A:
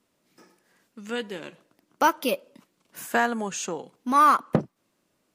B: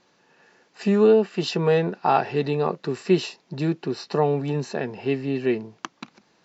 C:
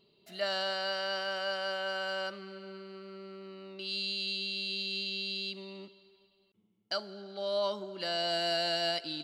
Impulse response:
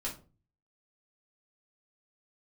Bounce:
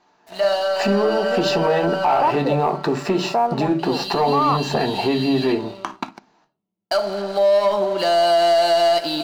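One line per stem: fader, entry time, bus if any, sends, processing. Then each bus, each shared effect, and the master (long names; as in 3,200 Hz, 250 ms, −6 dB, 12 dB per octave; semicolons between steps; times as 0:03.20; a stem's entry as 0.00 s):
−6.5 dB, 0.20 s, no bus, no send, Butterworth low-pass 1,200 Hz
−2.0 dB, 0.00 s, bus A, send −5 dB, parametric band 540 Hz −14 dB 0.23 octaves; downward compressor, threshold −19 dBFS, peak gain reduction 6 dB
−5.5 dB, 0.00 s, bus A, send −4 dB, leveller curve on the samples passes 2; automatic ducking −15 dB, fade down 0.70 s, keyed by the second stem
bus A: 0.0 dB, leveller curve on the samples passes 2; downward compressor, threshold −29 dBFS, peak gain reduction 11.5 dB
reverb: on, RT60 0.35 s, pre-delay 3 ms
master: parametric band 760 Hz +13 dB 1.4 octaves; leveller curve on the samples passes 1; brickwall limiter −10.5 dBFS, peak gain reduction 6.5 dB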